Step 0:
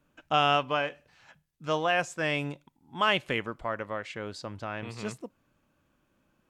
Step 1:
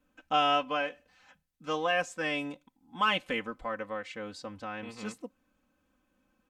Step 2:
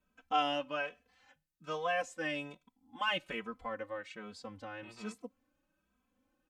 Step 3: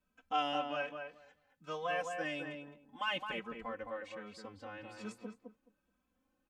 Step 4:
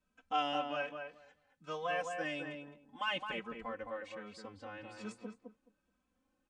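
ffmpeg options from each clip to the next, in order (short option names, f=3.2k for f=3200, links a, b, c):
-af "aecho=1:1:3.9:0.84,volume=-5dB"
-filter_complex "[0:a]asplit=2[a][b];[b]adelay=2.7,afreqshift=1.2[c];[a][c]amix=inputs=2:normalize=1,volume=-2.5dB"
-filter_complex "[0:a]asplit=2[a][b];[b]adelay=213,lowpass=f=1.6k:p=1,volume=-4dB,asplit=2[c][d];[d]adelay=213,lowpass=f=1.6k:p=1,volume=0.16,asplit=2[e][f];[f]adelay=213,lowpass=f=1.6k:p=1,volume=0.16[g];[a][c][e][g]amix=inputs=4:normalize=0,volume=-3dB"
-af "aresample=22050,aresample=44100"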